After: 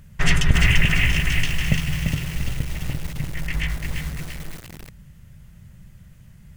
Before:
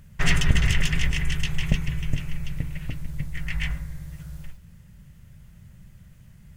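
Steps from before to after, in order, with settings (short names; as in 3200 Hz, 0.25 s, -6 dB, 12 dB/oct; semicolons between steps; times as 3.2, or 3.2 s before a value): 0.58–1.12 resonant high shelf 3500 Hz -10.5 dB, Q 3; 1.68–2.36 HPF 58 Hz 24 dB/oct; 3.83–4.25 sample leveller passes 2; lo-fi delay 0.343 s, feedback 55%, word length 6-bit, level -4 dB; gain +2.5 dB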